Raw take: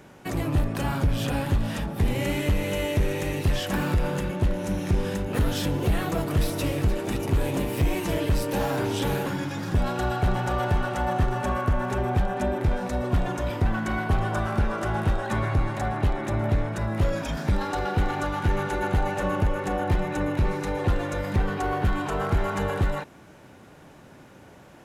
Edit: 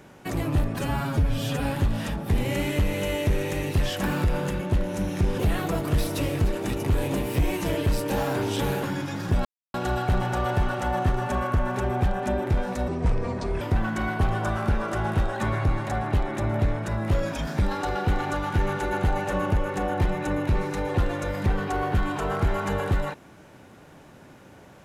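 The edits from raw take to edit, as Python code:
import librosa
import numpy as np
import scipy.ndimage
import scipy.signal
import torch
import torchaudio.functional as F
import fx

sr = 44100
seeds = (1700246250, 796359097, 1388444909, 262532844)

y = fx.edit(x, sr, fx.stretch_span(start_s=0.75, length_s=0.6, factor=1.5),
    fx.cut(start_s=5.08, length_s=0.73),
    fx.insert_silence(at_s=9.88, length_s=0.29),
    fx.speed_span(start_s=13.02, length_s=0.49, speed=0.67), tone=tone)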